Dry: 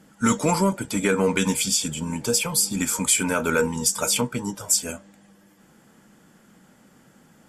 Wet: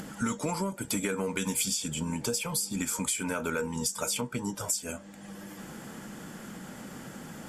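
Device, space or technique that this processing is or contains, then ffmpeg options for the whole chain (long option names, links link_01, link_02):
upward and downward compression: -filter_complex "[0:a]acompressor=mode=upward:threshold=-37dB:ratio=2.5,acompressor=threshold=-33dB:ratio=5,asettb=1/sr,asplit=3[link_01][link_02][link_03];[link_01]atrim=end=0.694[link_04];[link_02]atrim=start=0.69:end=1.7,asetpts=PTS-STARTPTS,afade=type=in:duration=0.004:curve=qsin,afade=type=out:start_time=1.006:duration=0.004:curve=qsin,highshelf=frequency=11000:gain=11.5[link_05];[link_03]atrim=start=1.696[link_06];[link_04][link_05]acrossfade=duration=0.004:curve1=hsin:curve2=qsin[link_07];[link_07][link_06]acrossfade=duration=0.004:curve1=qsin:curve2=hsin,volume=3.5dB"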